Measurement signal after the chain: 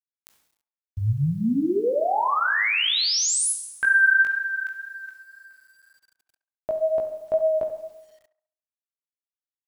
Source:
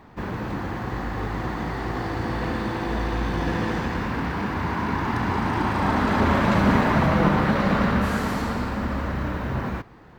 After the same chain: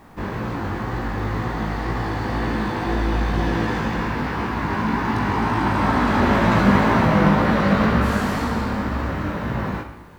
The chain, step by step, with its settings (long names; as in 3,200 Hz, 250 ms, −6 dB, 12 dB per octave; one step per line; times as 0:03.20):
four-comb reverb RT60 1 s, combs from 29 ms, DRR 7.5 dB
chorus effect 2 Hz, delay 17 ms, depth 3 ms
bit reduction 11 bits
on a send: feedback echo with a band-pass in the loop 69 ms, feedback 47%, band-pass 910 Hz, level −12.5 dB
on the sum: level +5 dB